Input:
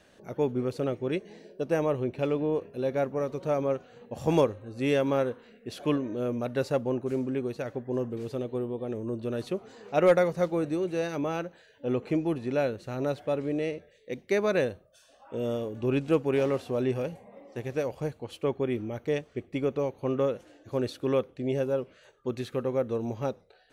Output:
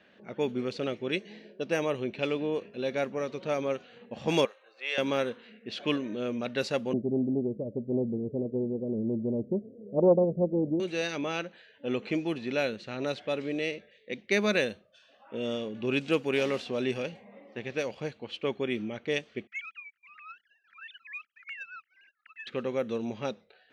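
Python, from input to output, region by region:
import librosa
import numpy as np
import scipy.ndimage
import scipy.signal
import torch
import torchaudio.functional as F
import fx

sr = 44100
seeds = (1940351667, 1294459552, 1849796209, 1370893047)

y = fx.chain(x, sr, fx.bessel_highpass(hz=850.0, order=6),
    fx.high_shelf(hz=3100.0, db=-9.5), at=(4.45, 4.98))
y = fx.chain(y, sr, fx.steep_lowpass(hz=630.0, slope=96),
    fx.low_shelf(hz=260.0, db=10.0),
    fx.doppler_dist(depth_ms=0.18), at=(6.93, 10.8))
y = fx.chain(y, sr, fx.sine_speech(),
    fx.cheby_ripple_highpass(hz=1300.0, ripple_db=3),
    fx.leveller(passes=2), at=(19.47, 22.47))
y = fx.weighting(y, sr, curve='D')
y = fx.env_lowpass(y, sr, base_hz=1900.0, full_db=-21.5)
y = fx.peak_eq(y, sr, hz=210.0, db=10.0, octaves=0.26)
y = y * 10.0 ** (-2.5 / 20.0)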